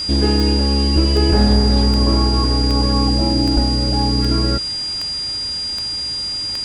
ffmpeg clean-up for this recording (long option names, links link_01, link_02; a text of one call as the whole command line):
ffmpeg -i in.wav -af "adeclick=threshold=4,bandreject=frequency=4800:width=30,afwtdn=0.018" out.wav